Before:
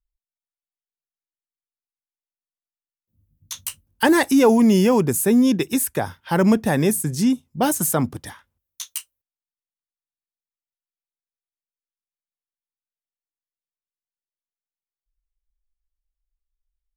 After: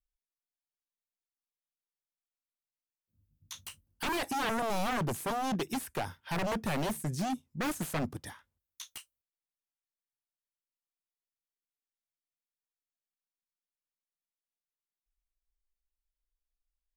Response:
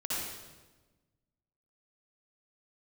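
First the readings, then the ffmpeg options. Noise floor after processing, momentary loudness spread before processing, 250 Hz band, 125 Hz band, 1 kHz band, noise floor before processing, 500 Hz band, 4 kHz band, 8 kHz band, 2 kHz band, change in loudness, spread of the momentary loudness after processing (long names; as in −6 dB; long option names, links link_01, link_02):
below −85 dBFS, 16 LU, −18.5 dB, −12.5 dB, −8.5 dB, below −85 dBFS, −16.5 dB, −9.0 dB, −16.5 dB, −10.5 dB, −15.5 dB, 14 LU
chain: -filter_complex "[0:a]aeval=exprs='0.119*(abs(mod(val(0)/0.119+3,4)-2)-1)':channel_layout=same,acrossover=split=4100[link_01][link_02];[link_02]acompressor=threshold=-33dB:ratio=4:attack=1:release=60[link_03];[link_01][link_03]amix=inputs=2:normalize=0,volume=-8dB"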